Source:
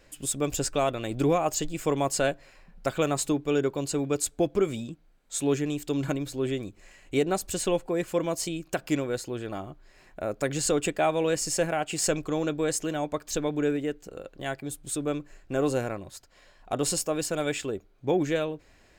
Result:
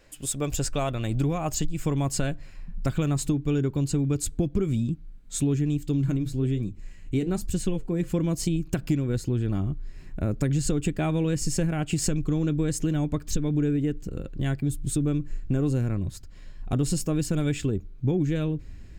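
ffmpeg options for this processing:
-filter_complex "[0:a]asettb=1/sr,asplit=3[s0][s1][s2];[s0]atrim=end=5.774[s3];[s1]atrim=start=5.77:end=8.1,asetpts=PTS-STARTPTS,afade=t=in:d=0.004:c=qsin,afade=t=out:st=2.326:d=0.004:c=qsin,flanger=delay=5.3:depth=5.3:regen=-70:speed=1.1:shape=sinusoidal[s4];[s2]atrim=start=8.096[s5];[s3][s4]acrossfade=d=0.004:c1=hsin:c2=qsin[s6];[s6][s5]acrossfade=d=0.004:c1=qsin:c2=hsin,asubboost=boost=11.5:cutoff=190,acompressor=threshold=0.0891:ratio=6"

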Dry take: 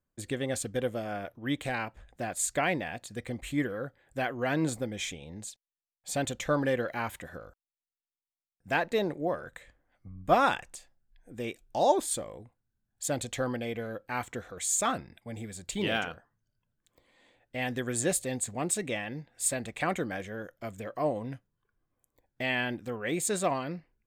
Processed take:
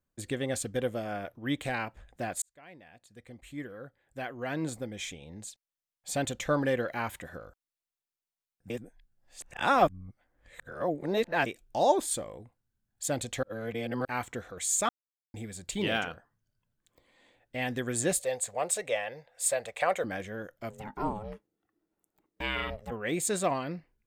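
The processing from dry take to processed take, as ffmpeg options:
-filter_complex "[0:a]asettb=1/sr,asplit=3[s0][s1][s2];[s0]atrim=end=18.194[s3];[s1]atrim=start=18.19:end=20.04,asetpts=PTS-STARTPTS,afade=t=in:d=0.004:c=qsin,afade=t=out:st=1.846:d=0.004:c=qsin,lowshelf=f=390:t=q:w=3:g=-10.5[s4];[s2]atrim=start=20.036[s5];[s3][s4]acrossfade=d=0.004:c1=hsin:c2=qsin[s6];[s6][s5]acrossfade=d=0.004:c1=qsin:c2=hsin,asplit=3[s7][s8][s9];[s7]afade=t=out:st=20.69:d=0.02[s10];[s8]aeval=exprs='val(0)*sin(2*PI*320*n/s)':c=same,afade=t=in:st=20.69:d=0.02,afade=t=out:st=22.9:d=0.02[s11];[s9]afade=t=in:st=22.9:d=0.02[s12];[s10][s11][s12]amix=inputs=3:normalize=0,asplit=8[s13][s14][s15][s16][s17][s18][s19][s20];[s13]atrim=end=2.42,asetpts=PTS-STARTPTS,afade=t=out:st=2.416:d=0.004:c=hsin[s21];[s14]atrim=start=2.42:end=8.702,asetpts=PTS-STARTPTS,afade=t=in:d=3.7[s22];[s15]atrim=start=8.698:end=11.462,asetpts=PTS-STARTPTS,areverse[s23];[s16]atrim=start=11.458:end=13.432[s24];[s17]atrim=start=13.428:end=14.052,asetpts=PTS-STARTPTS,areverse[s25];[s18]atrim=start=14.048:end=14.89,asetpts=PTS-STARTPTS,afade=t=out:st=0.838:d=0.004:c=hsin[s26];[s19]atrim=start=14.89:end=15.34,asetpts=PTS-STARTPTS,volume=0[s27];[s20]atrim=start=15.34,asetpts=PTS-STARTPTS,afade=t=in:d=0.004:c=hsin[s28];[s21][s22]concat=n=2:v=0:a=1[s29];[s29][s23]acrossfade=d=0.004:c1=hsin:c2=hsin[s30];[s30][s24]acrossfade=d=0.004:c1=hsin:c2=hsin[s31];[s31][s25]acrossfade=d=0.004:c1=hsin:c2=hsin[s32];[s26][s27][s28]concat=n=3:v=0:a=1[s33];[s32][s33]acrossfade=d=0.004:c1=hsin:c2=hsin"

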